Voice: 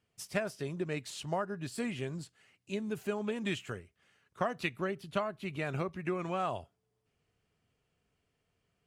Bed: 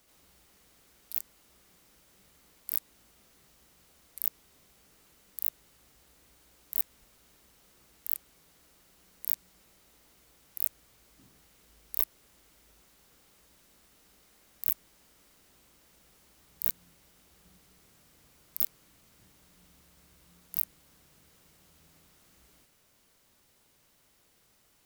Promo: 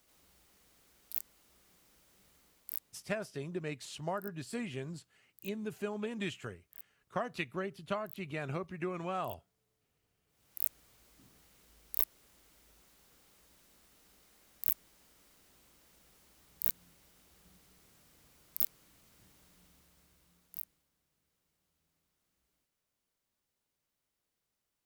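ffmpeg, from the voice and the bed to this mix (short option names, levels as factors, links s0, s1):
-filter_complex "[0:a]adelay=2750,volume=0.708[s0];[1:a]volume=5.62,afade=t=out:st=2.35:d=0.84:silence=0.133352,afade=t=in:st=10.27:d=0.41:silence=0.112202,afade=t=out:st=19.42:d=1.49:silence=0.141254[s1];[s0][s1]amix=inputs=2:normalize=0"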